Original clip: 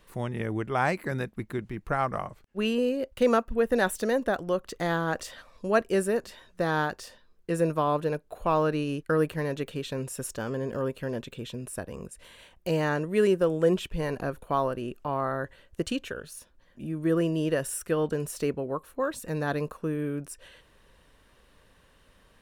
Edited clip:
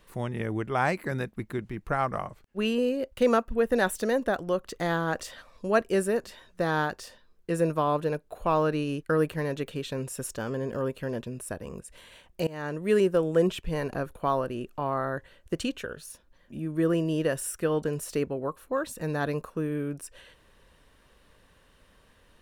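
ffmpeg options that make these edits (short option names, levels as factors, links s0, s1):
-filter_complex "[0:a]asplit=3[s0][s1][s2];[s0]atrim=end=11.242[s3];[s1]atrim=start=11.508:end=12.74,asetpts=PTS-STARTPTS,afade=t=out:st=1.228:d=0.004:c=hsin:silence=0.0841395[s4];[s2]atrim=start=12.74,asetpts=PTS-STARTPTS,afade=t=in:d=0.42:silence=0.0841395[s5];[s4][s5]concat=n=2:v=0:a=1[s6];[s3][s6]acrossfade=d=0.004:c1=hsin:c2=hsin"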